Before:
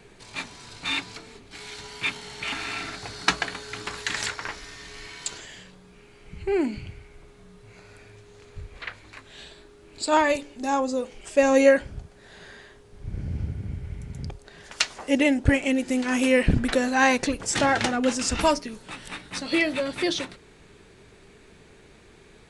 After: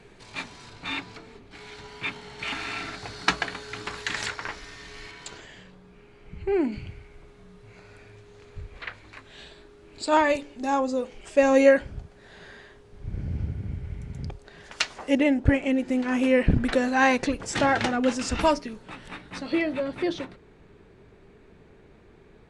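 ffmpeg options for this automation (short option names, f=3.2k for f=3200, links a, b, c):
-af "asetnsamples=n=441:p=0,asendcmd='0.7 lowpass f 1900;2.39 lowpass f 4500;5.11 lowpass f 2000;6.72 lowpass f 4100;15.15 lowpass f 1700;16.6 lowpass f 3300;18.73 lowpass f 1800;19.52 lowpass f 1100',lowpass=f=4.5k:p=1"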